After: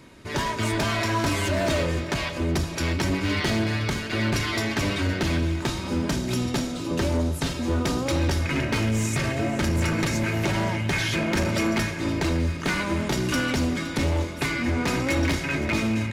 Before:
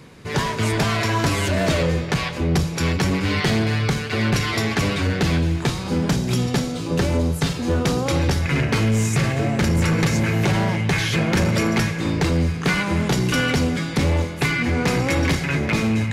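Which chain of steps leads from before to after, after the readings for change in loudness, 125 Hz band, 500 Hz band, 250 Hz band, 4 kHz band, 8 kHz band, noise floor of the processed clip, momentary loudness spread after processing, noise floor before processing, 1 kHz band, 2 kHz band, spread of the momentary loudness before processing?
−4.5 dB, −6.0 dB, −4.0 dB, −4.0 dB, −3.5 dB, −3.5 dB, −32 dBFS, 3 LU, −28 dBFS, −3.5 dB, −3.5 dB, 3 LU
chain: comb filter 3.2 ms, depth 47%
gain into a clipping stage and back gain 14.5 dB
on a send: repeating echo 515 ms, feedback 54%, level −16 dB
on the sum: level −4 dB

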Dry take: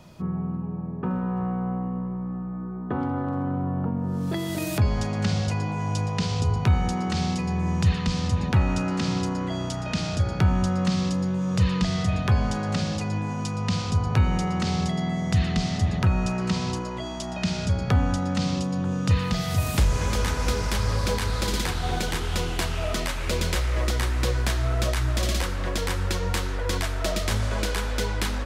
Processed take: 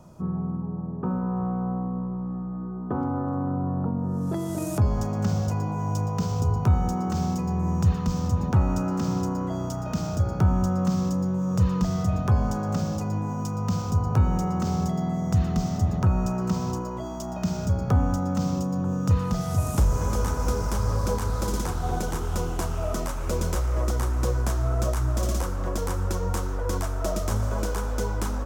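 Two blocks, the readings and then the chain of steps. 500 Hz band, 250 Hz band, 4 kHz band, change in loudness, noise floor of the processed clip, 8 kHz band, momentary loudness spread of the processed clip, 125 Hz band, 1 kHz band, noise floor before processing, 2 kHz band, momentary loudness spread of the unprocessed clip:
0.0 dB, 0.0 dB, −11.0 dB, −0.5 dB, −32 dBFS, −2.5 dB, 6 LU, 0.0 dB, −0.5 dB, −32 dBFS, −9.0 dB, 6 LU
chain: flat-topped bell 2,800 Hz −13 dB
linearly interpolated sample-rate reduction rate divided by 2×

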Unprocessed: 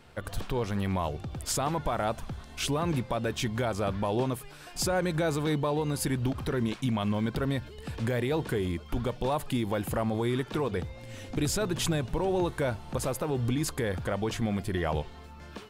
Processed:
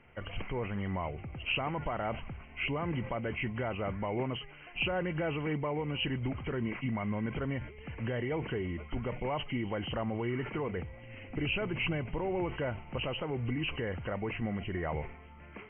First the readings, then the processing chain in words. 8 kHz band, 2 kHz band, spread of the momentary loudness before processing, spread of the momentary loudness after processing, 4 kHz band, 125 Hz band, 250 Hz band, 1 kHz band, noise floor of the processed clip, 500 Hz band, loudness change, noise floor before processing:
below −40 dB, +0.5 dB, 6 LU, 7 LU, −2.5 dB, −5.0 dB, −5.0 dB, −5.5 dB, −51 dBFS, −5.5 dB, −4.5 dB, −47 dBFS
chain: hearing-aid frequency compression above 1,900 Hz 4 to 1
level that may fall only so fast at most 100 dB per second
level −5.5 dB

